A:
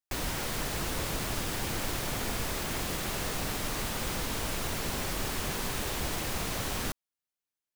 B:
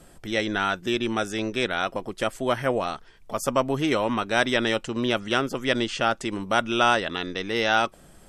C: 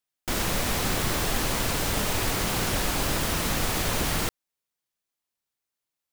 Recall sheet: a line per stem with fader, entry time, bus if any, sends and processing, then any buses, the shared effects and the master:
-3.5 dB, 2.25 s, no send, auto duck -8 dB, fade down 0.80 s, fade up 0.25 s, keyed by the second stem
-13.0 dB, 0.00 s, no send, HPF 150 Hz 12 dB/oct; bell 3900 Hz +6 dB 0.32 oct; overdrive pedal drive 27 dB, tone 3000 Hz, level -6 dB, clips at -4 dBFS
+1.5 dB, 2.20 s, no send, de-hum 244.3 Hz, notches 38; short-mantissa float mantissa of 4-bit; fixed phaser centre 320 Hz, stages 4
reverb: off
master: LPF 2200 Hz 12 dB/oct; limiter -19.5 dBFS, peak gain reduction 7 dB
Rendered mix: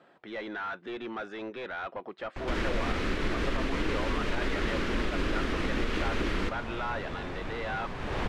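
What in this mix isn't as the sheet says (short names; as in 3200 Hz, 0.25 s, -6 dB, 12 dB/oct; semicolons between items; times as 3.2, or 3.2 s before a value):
stem A -3.5 dB -> +5.0 dB; stem B -13.0 dB -> -21.0 dB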